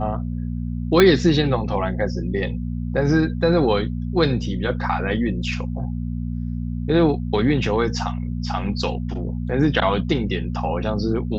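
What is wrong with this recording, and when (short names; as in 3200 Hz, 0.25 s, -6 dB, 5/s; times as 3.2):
hum 60 Hz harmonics 4 -26 dBFS
1 pop -1 dBFS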